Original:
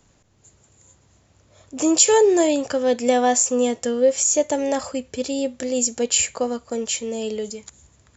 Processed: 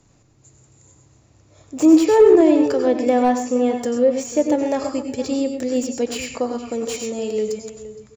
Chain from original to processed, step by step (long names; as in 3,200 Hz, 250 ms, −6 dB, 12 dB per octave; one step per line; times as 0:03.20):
treble cut that deepens with the level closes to 2,700 Hz, closed at −14.5 dBFS
thirty-one-band graphic EQ 125 Hz +9 dB, 315 Hz +7 dB, 1,600 Hz −3 dB, 3,150 Hz −5 dB
slap from a distant wall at 80 metres, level −14 dB
on a send at −5.5 dB: convolution reverb, pre-delay 82 ms
on the sum: slew-rate limiting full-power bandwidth 230 Hz